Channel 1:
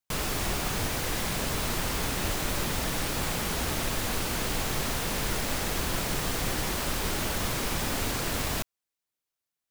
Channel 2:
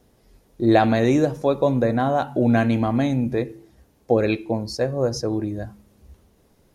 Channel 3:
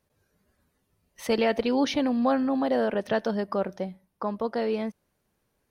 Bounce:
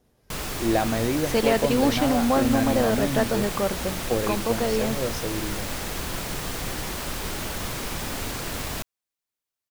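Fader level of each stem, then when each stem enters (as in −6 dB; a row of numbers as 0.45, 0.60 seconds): −1.0, −7.0, +2.0 decibels; 0.20, 0.00, 0.05 seconds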